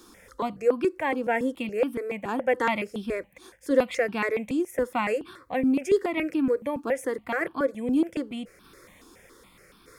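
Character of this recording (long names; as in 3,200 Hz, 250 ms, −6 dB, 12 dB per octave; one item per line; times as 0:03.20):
tremolo saw down 0.81 Hz, depth 35%
notches that jump at a steady rate 7.1 Hz 550–2,000 Hz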